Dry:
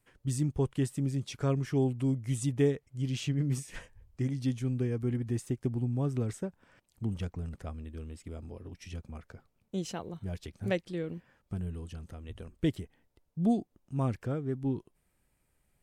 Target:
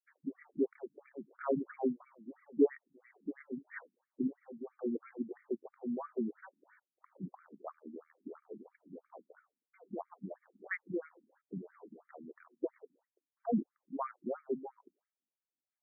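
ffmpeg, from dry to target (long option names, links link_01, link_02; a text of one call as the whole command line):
ffmpeg -i in.wav -af "agate=range=-33dB:threshold=-58dB:ratio=3:detection=peak,afftfilt=real='re*between(b*sr/1024,240*pow(1700/240,0.5+0.5*sin(2*PI*3*pts/sr))/1.41,240*pow(1700/240,0.5+0.5*sin(2*PI*3*pts/sr))*1.41)':imag='im*between(b*sr/1024,240*pow(1700/240,0.5+0.5*sin(2*PI*3*pts/sr))/1.41,240*pow(1700/240,0.5+0.5*sin(2*PI*3*pts/sr))*1.41)':win_size=1024:overlap=0.75,volume=3dB" out.wav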